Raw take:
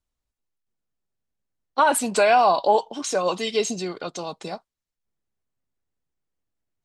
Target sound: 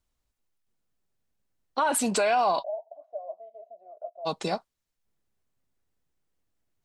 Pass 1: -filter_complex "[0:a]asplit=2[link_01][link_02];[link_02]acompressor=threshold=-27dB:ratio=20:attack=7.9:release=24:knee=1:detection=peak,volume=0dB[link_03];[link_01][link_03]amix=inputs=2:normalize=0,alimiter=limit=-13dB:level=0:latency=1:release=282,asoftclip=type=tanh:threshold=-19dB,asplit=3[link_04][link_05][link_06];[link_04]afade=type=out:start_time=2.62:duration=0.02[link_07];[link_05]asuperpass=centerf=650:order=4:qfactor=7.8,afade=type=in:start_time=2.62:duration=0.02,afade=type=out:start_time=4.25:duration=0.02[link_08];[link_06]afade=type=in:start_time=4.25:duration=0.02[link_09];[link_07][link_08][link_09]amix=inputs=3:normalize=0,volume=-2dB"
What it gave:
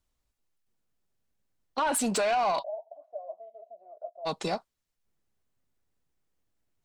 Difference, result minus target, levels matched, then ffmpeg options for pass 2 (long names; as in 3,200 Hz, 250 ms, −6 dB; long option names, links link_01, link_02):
soft clipping: distortion +17 dB
-filter_complex "[0:a]asplit=2[link_01][link_02];[link_02]acompressor=threshold=-27dB:ratio=20:attack=7.9:release=24:knee=1:detection=peak,volume=0dB[link_03];[link_01][link_03]amix=inputs=2:normalize=0,alimiter=limit=-13dB:level=0:latency=1:release=282,asoftclip=type=tanh:threshold=-8dB,asplit=3[link_04][link_05][link_06];[link_04]afade=type=out:start_time=2.62:duration=0.02[link_07];[link_05]asuperpass=centerf=650:order=4:qfactor=7.8,afade=type=in:start_time=2.62:duration=0.02,afade=type=out:start_time=4.25:duration=0.02[link_08];[link_06]afade=type=in:start_time=4.25:duration=0.02[link_09];[link_07][link_08][link_09]amix=inputs=3:normalize=0,volume=-2dB"